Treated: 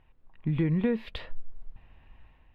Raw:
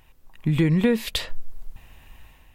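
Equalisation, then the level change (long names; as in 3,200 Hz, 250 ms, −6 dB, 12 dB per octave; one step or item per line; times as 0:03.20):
high-frequency loss of the air 390 metres
−6.0 dB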